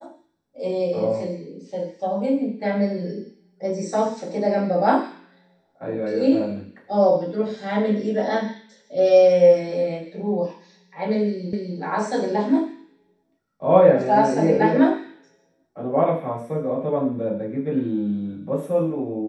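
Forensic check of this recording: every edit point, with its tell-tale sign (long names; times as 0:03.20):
0:11.53: the same again, the last 0.25 s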